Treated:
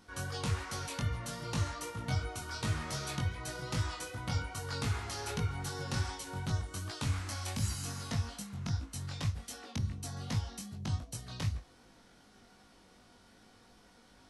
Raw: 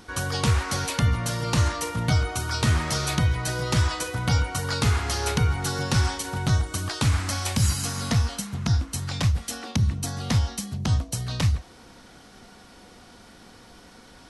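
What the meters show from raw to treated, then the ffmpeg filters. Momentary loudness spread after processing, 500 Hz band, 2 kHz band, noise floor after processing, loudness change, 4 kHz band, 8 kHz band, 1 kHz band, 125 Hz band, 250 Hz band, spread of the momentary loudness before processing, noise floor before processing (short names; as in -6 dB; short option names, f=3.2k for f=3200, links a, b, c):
5 LU, -11.5 dB, -12.0 dB, -61 dBFS, -12.0 dB, -12.0 dB, -12.0 dB, -11.5 dB, -12.0 dB, -12.0 dB, 5 LU, -50 dBFS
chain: -af "flanger=delay=19:depth=2.6:speed=2.6,volume=-9dB"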